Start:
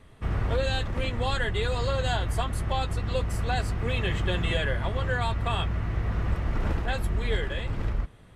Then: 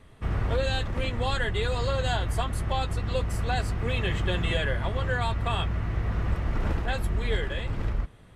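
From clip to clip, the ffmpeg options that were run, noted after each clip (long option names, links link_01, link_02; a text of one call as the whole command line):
ffmpeg -i in.wav -af anull out.wav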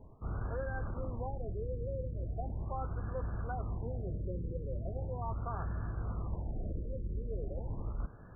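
ffmpeg -i in.wav -af "areverse,acompressor=threshold=-34dB:ratio=6,areverse,lowpass=frequency=3500:width_type=q:width=6.4,afftfilt=real='re*lt(b*sr/1024,570*pow(1800/570,0.5+0.5*sin(2*PI*0.39*pts/sr)))':imag='im*lt(b*sr/1024,570*pow(1800/570,0.5+0.5*sin(2*PI*0.39*pts/sr)))':win_size=1024:overlap=0.75" out.wav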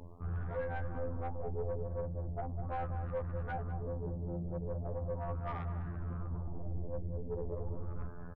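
ffmpeg -i in.wav -filter_complex "[0:a]afftfilt=real='hypot(re,im)*cos(PI*b)':imag='0':win_size=2048:overlap=0.75,asoftclip=type=tanh:threshold=-38dB,asplit=2[link_01][link_02];[link_02]adelay=202,lowpass=frequency=810:poles=1,volume=-6dB,asplit=2[link_03][link_04];[link_04]adelay=202,lowpass=frequency=810:poles=1,volume=0.35,asplit=2[link_05][link_06];[link_06]adelay=202,lowpass=frequency=810:poles=1,volume=0.35,asplit=2[link_07][link_08];[link_08]adelay=202,lowpass=frequency=810:poles=1,volume=0.35[link_09];[link_03][link_05][link_07][link_09]amix=inputs=4:normalize=0[link_10];[link_01][link_10]amix=inputs=2:normalize=0,volume=8dB" out.wav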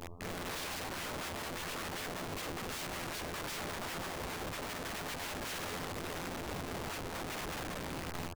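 ffmpeg -i in.wav -af "aeval=exprs='(mod(94.4*val(0)+1,2)-1)/94.4':channel_layout=same,volume=4dB" out.wav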